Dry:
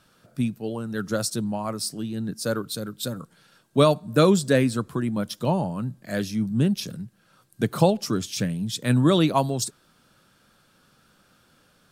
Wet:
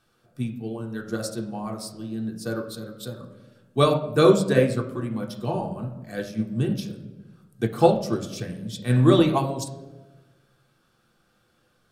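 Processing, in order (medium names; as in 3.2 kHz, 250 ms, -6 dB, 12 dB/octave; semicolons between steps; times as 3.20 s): reverberation RT60 1.3 s, pre-delay 3 ms, DRR -0.5 dB; upward expansion 1.5:1, over -25 dBFS; trim -1 dB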